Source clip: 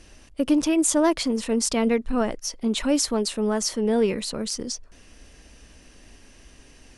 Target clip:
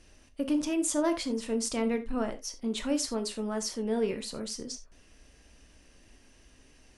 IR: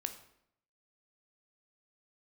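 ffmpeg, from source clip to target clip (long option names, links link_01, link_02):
-filter_complex "[1:a]atrim=start_sample=2205,afade=type=out:start_time=0.17:duration=0.01,atrim=end_sample=7938,asetrate=57330,aresample=44100[link_01];[0:a][link_01]afir=irnorm=-1:irlink=0,volume=-5dB"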